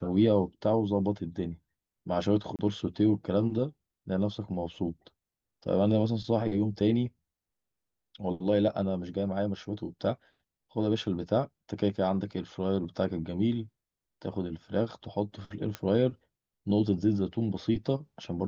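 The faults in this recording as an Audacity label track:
2.560000	2.590000	gap 28 ms
15.750000	15.750000	pop -19 dBFS

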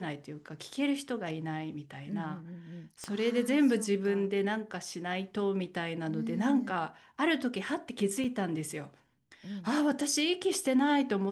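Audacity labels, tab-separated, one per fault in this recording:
3.040000	3.040000	pop -24 dBFS
8.240000	8.240000	gap 4.2 ms

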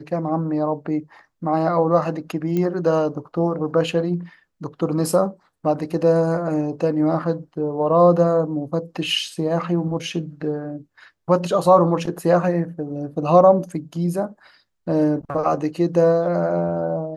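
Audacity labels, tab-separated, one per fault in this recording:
2.570000	2.570000	pop -13 dBFS

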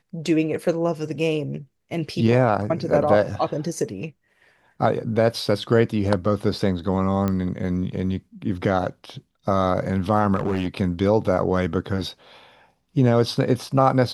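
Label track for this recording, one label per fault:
7.280000	7.280000	pop -12 dBFS
10.350000	10.770000	clipped -18 dBFS

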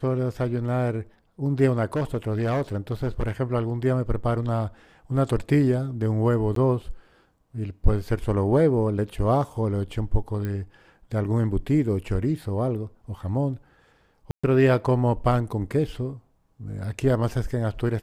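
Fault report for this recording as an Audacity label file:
1.930000	3.310000	clipped -20.5 dBFS
6.550000	6.560000	gap 13 ms
10.450000	10.450000	pop -19 dBFS
14.310000	14.440000	gap 0.125 s

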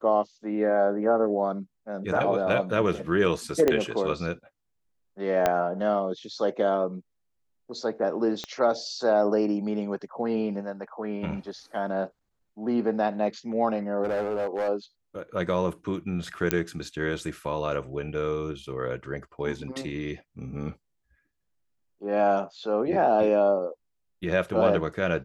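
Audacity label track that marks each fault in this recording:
3.680000	3.680000	pop -9 dBFS
5.460000	5.460000	pop -9 dBFS
8.440000	8.440000	pop -18 dBFS
14.030000	14.690000	clipped -23.5 dBFS
16.510000	16.510000	pop -6 dBFS

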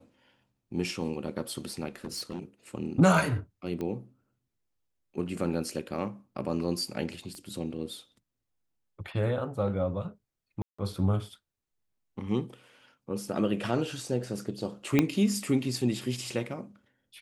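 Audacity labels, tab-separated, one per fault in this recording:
1.960000	2.390000	clipped -31 dBFS
3.810000	3.810000	pop -23 dBFS
7.350000	7.350000	pop -31 dBFS
10.620000	10.790000	gap 0.165 s
14.990000	14.990000	pop -9 dBFS

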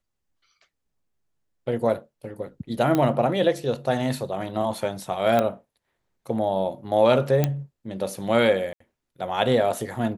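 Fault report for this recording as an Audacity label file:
2.950000	2.950000	pop -10 dBFS
5.390000	5.390000	pop -10 dBFS
7.440000	7.440000	pop -8 dBFS
8.730000	8.800000	gap 74 ms

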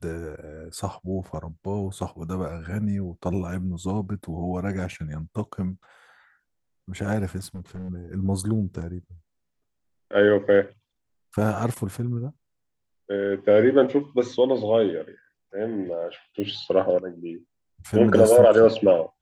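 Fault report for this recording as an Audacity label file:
7.380000	7.900000	clipped -31.5 dBFS
16.400000	16.400000	pop -19 dBFS

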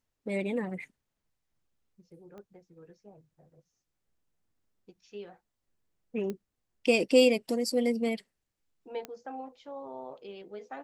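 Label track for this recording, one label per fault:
2.380000	2.380000	pop -36 dBFS
6.300000	6.300000	pop -23 dBFS
9.050000	9.050000	pop -23 dBFS

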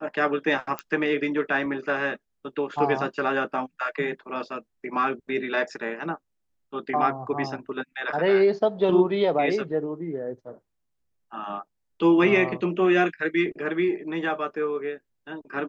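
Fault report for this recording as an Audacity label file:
0.790000	0.790000	pop -14 dBFS

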